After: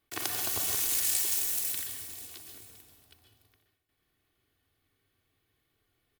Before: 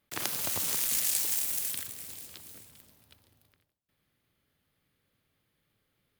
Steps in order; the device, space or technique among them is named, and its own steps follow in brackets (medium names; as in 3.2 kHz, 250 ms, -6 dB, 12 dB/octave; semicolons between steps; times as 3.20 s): microphone above a desk (comb 2.7 ms, depth 62%; reverberation RT60 0.50 s, pre-delay 120 ms, DRR 5 dB); trim -2 dB